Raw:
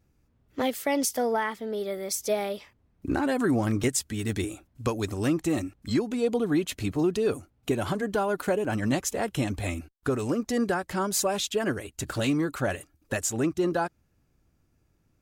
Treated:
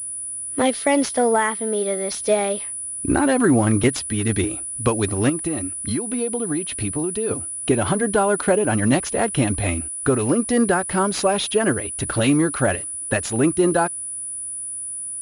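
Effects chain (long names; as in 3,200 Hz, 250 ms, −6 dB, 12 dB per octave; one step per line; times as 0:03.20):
0:05.29–0:07.31: downward compressor, threshold −30 dBFS, peak gain reduction 10 dB
switching amplifier with a slow clock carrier 9,800 Hz
level +8 dB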